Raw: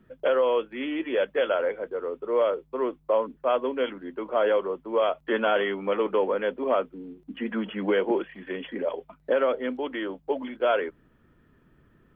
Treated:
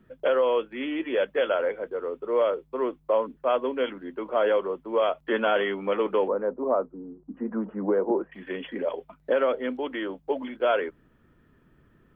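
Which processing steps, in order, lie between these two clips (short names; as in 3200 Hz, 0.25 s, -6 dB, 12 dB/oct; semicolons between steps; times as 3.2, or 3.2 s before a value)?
6.28–8.32 LPF 1200 Hz 24 dB/oct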